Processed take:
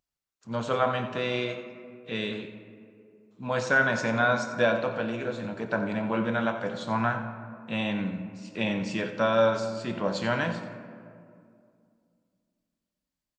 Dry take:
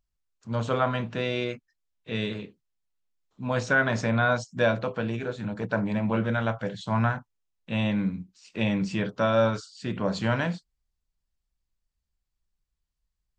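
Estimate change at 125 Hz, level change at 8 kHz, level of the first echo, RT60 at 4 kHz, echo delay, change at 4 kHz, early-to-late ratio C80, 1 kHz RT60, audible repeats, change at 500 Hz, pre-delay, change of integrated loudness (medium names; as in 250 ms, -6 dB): -6.0 dB, +0.5 dB, -13.0 dB, 1.1 s, 89 ms, +0.5 dB, 8.5 dB, 2.2 s, 1, +0.5 dB, 4 ms, -0.5 dB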